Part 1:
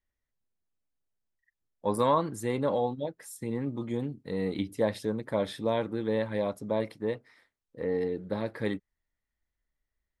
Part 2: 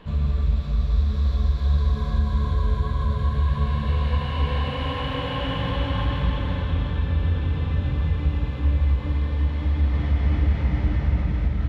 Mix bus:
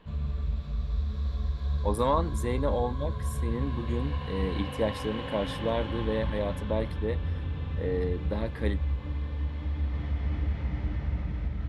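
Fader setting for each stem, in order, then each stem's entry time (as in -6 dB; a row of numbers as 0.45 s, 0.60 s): -1.0 dB, -9.0 dB; 0.00 s, 0.00 s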